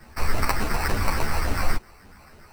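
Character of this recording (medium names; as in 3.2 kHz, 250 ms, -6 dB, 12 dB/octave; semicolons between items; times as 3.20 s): phasing stages 4, 3.5 Hz, lowest notch 350–1200 Hz; aliases and images of a low sample rate 3.4 kHz, jitter 0%; a shimmering, thickened sound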